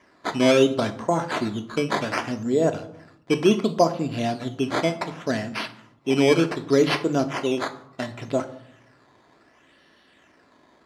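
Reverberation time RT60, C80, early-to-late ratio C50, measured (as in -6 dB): 0.80 s, 17.5 dB, 14.0 dB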